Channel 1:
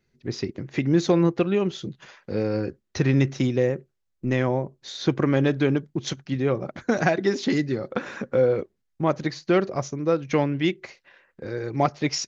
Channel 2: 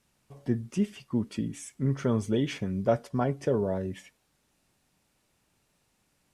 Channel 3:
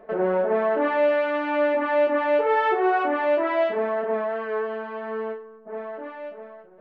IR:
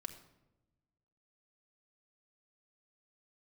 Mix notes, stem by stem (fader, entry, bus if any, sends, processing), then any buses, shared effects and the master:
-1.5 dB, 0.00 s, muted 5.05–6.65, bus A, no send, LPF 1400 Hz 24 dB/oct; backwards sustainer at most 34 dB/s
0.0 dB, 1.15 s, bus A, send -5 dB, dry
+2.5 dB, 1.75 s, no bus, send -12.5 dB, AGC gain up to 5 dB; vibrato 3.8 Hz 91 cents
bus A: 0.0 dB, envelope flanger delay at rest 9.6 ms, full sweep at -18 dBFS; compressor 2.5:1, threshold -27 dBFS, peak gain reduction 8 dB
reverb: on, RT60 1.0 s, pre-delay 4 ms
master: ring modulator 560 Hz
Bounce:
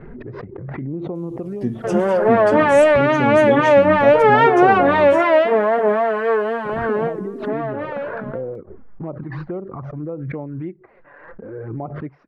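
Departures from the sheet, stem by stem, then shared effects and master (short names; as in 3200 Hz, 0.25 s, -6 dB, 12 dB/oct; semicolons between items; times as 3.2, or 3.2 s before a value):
stem 2 0.0 dB -> +6.5 dB; master: missing ring modulator 560 Hz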